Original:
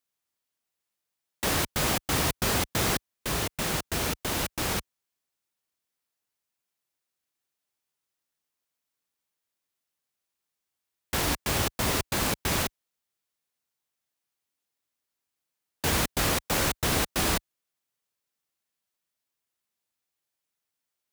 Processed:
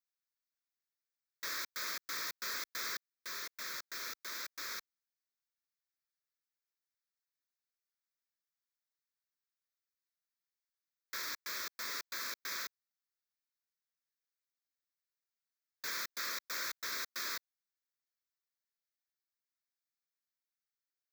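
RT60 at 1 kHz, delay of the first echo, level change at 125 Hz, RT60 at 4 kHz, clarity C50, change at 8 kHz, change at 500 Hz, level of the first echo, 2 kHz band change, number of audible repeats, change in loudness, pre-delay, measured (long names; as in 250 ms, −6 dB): no reverb audible, no echo audible, below −40 dB, no reverb audible, no reverb audible, −13.5 dB, −23.5 dB, no echo audible, −9.5 dB, no echo audible, −12.5 dB, no reverb audible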